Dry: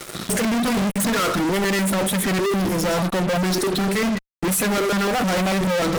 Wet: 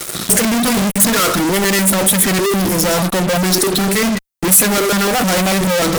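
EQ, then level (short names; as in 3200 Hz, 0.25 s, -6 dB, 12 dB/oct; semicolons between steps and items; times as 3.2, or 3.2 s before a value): high shelf 5700 Hz +11 dB; +5.0 dB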